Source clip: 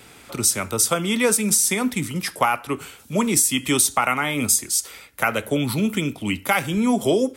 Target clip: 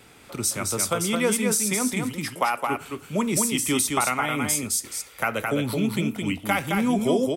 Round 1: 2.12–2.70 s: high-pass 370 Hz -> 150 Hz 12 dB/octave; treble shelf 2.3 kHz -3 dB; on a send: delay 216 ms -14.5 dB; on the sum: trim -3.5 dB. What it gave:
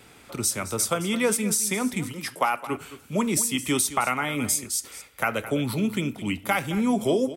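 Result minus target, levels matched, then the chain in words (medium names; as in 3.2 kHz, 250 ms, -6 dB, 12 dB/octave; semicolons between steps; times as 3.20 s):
echo-to-direct -10.5 dB
2.12–2.70 s: high-pass 370 Hz -> 150 Hz 12 dB/octave; treble shelf 2.3 kHz -3 dB; on a send: delay 216 ms -4 dB; on the sum: trim -3.5 dB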